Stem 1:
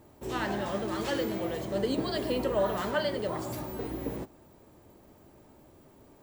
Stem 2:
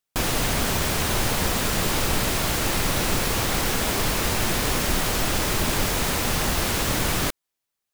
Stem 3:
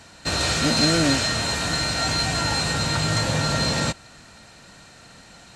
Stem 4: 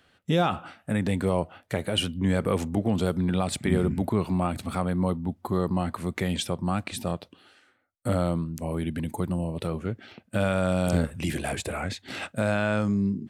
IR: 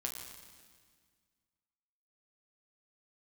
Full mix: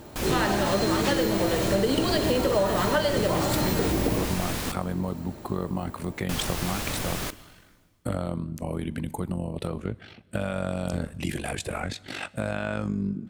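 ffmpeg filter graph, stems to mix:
-filter_complex "[0:a]acontrast=50,volume=2dB,asplit=2[link_01][link_02];[link_02]volume=-4dB[link_03];[1:a]volume=-9.5dB,asplit=3[link_04][link_05][link_06];[link_04]atrim=end=4.72,asetpts=PTS-STARTPTS,afade=type=out:start_time=4.716:duration=0.004:curve=hsin[link_07];[link_05]atrim=start=4.72:end=6.29,asetpts=PTS-STARTPTS,volume=0[link_08];[link_06]atrim=start=6.29,asetpts=PTS-STARTPTS,afade=type=in:duration=0.004:curve=hsin[link_09];[link_07][link_08][link_09]concat=n=3:v=0:a=1,asplit=2[link_10][link_11];[link_11]volume=-11dB[link_12];[2:a]volume=-10.5dB[link_13];[3:a]acompressor=threshold=-26dB:ratio=3,tremolo=f=48:d=0.75,volume=2.5dB,asplit=2[link_14][link_15];[link_15]volume=-17dB[link_16];[4:a]atrim=start_sample=2205[link_17];[link_03][link_12][link_16]amix=inputs=3:normalize=0[link_18];[link_18][link_17]afir=irnorm=-1:irlink=0[link_19];[link_01][link_10][link_13][link_14][link_19]amix=inputs=5:normalize=0,acompressor=threshold=-20dB:ratio=6"

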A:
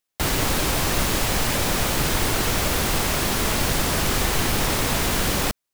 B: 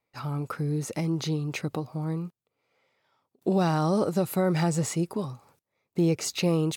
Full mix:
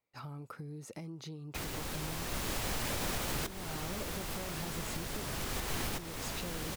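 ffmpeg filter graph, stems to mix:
ffmpeg -i stem1.wav -i stem2.wav -filter_complex "[0:a]adelay=1350,volume=-3dB[link_01];[1:a]acompressor=threshold=-34dB:ratio=8,volume=-7.5dB,asplit=2[link_02][link_03];[link_03]apad=whole_len=312569[link_04];[link_01][link_04]sidechaincompress=threshold=-58dB:ratio=4:attack=16:release=995[link_05];[link_05][link_02]amix=inputs=2:normalize=0,alimiter=level_in=1dB:limit=-24dB:level=0:latency=1:release=253,volume=-1dB" out.wav

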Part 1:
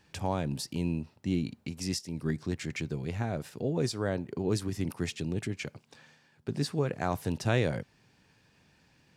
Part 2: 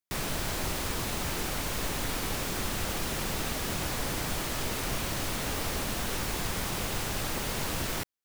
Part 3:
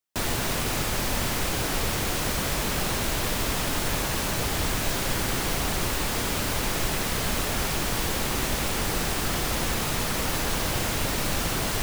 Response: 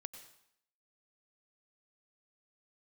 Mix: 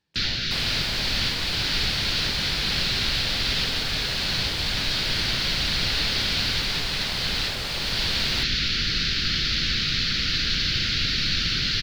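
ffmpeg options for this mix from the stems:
-filter_complex "[0:a]volume=-15.5dB,asplit=2[link_01][link_02];[1:a]highpass=frequency=370:width=0.5412,highpass=frequency=370:width=1.3066,acrossover=split=7200[link_03][link_04];[link_04]acompressor=threshold=-45dB:ratio=4:attack=1:release=60[link_05];[link_03][link_05]amix=inputs=2:normalize=0,adelay=400,volume=-1dB[link_06];[2:a]firequalizer=gain_entry='entry(160,0);entry(900,-29);entry(1400,1);entry(4400,14);entry(8300,-25)':delay=0.05:min_phase=1,volume=0dB[link_07];[link_02]apad=whole_len=525767[link_08];[link_07][link_08]sidechaincompress=threshold=-42dB:ratio=8:attack=42:release=808[link_09];[link_01][link_06][link_09]amix=inputs=3:normalize=0"

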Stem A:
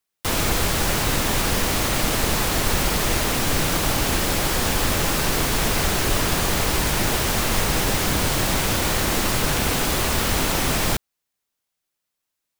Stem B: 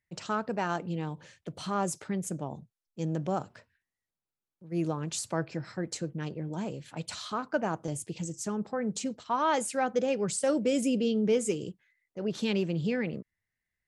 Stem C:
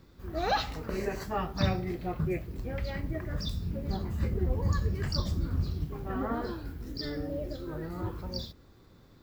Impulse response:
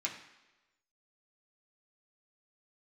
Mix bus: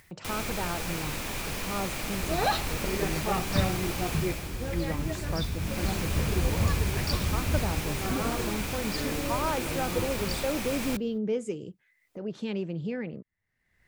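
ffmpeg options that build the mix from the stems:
-filter_complex "[0:a]equalizer=frequency=2400:width_type=o:width=0.22:gain=7.5,volume=-5.5dB,afade=type=out:start_time=4.13:duration=0.39:silence=0.398107,afade=type=in:start_time=5.58:duration=0.27:silence=0.421697[link_01];[1:a]highshelf=frequency=3600:gain=-11,volume=-3dB[link_02];[2:a]adelay=1950,volume=1.5dB[link_03];[link_01][link_02][link_03]amix=inputs=3:normalize=0,acompressor=mode=upward:threshold=-36dB:ratio=2.5"

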